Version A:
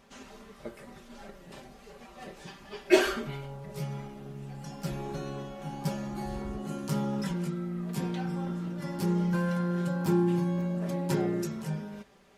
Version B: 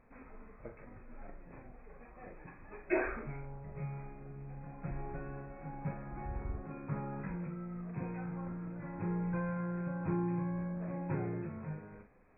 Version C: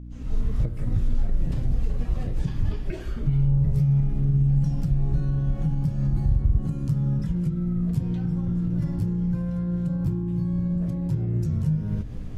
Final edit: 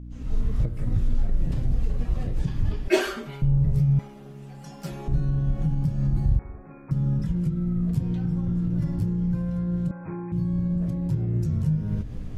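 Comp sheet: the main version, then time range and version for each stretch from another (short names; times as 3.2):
C
2.88–3.42 from A
3.99–5.08 from A
6.39–6.91 from B
9.91–10.32 from B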